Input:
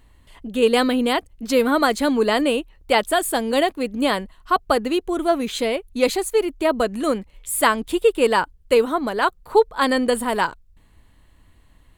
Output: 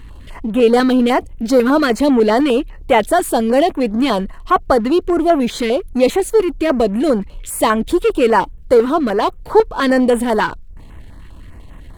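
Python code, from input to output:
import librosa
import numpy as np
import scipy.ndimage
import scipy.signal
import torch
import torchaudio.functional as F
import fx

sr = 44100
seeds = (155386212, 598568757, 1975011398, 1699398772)

y = fx.power_curve(x, sr, exponent=0.7)
y = fx.high_shelf(y, sr, hz=4400.0, db=-10.5)
y = fx.filter_held_notch(y, sr, hz=10.0, low_hz=640.0, high_hz=4700.0)
y = y * 10.0 ** (3.5 / 20.0)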